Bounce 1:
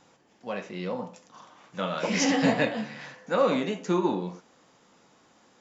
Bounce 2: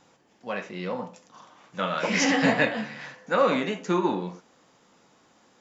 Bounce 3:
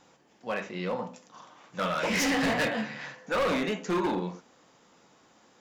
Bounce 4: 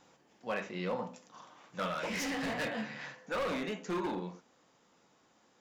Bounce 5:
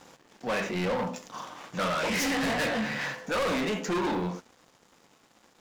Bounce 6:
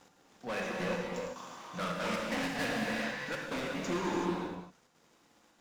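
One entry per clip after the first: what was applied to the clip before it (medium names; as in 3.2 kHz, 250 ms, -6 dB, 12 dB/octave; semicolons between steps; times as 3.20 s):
dynamic bell 1.7 kHz, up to +6 dB, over -44 dBFS, Q 0.86
hum notches 50/100/150/200/250 Hz; overload inside the chain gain 23.5 dB
gain riding within 3 dB 0.5 s; trim -6.5 dB
waveshaping leveller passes 3; trim +2.5 dB
trance gate "x.xxxxxxx.xx..x" 188 bpm; reverberation, pre-delay 17 ms, DRR -1.5 dB; trim -8 dB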